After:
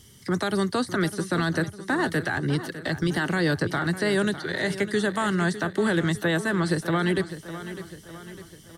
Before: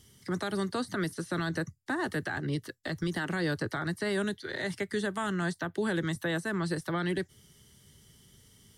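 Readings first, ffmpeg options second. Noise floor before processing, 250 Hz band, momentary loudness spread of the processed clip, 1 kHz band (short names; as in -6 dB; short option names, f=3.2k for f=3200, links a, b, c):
-61 dBFS, +7.5 dB, 12 LU, +7.5 dB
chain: -af "aecho=1:1:604|1208|1812|2416|3020:0.224|0.112|0.056|0.028|0.014,volume=7dB"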